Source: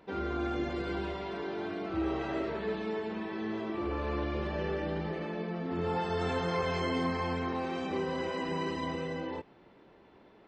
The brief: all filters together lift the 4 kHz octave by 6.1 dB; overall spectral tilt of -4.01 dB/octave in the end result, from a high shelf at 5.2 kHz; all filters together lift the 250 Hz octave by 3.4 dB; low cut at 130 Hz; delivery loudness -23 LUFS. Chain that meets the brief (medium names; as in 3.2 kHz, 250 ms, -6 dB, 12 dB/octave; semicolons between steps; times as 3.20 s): high-pass 130 Hz; peaking EQ 250 Hz +5 dB; peaking EQ 4 kHz +5.5 dB; treble shelf 5.2 kHz +6.5 dB; trim +9 dB